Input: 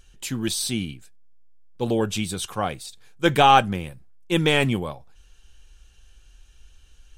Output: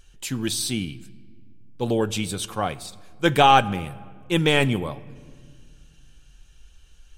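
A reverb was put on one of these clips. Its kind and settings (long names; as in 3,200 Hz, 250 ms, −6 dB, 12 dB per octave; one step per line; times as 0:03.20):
rectangular room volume 3,200 cubic metres, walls mixed, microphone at 0.31 metres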